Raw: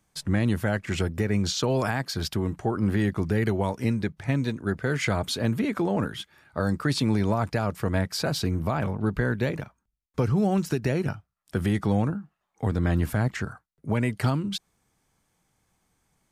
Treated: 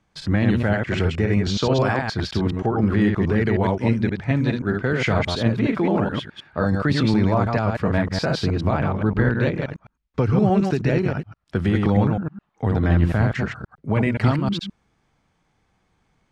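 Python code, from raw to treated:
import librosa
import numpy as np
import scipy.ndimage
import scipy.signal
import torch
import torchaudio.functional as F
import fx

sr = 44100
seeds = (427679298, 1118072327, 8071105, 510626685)

y = fx.reverse_delay(x, sr, ms=105, wet_db=-3.0)
y = scipy.signal.sosfilt(scipy.signal.butter(2, 3900.0, 'lowpass', fs=sr, output='sos'), y)
y = y * 10.0 ** (4.0 / 20.0)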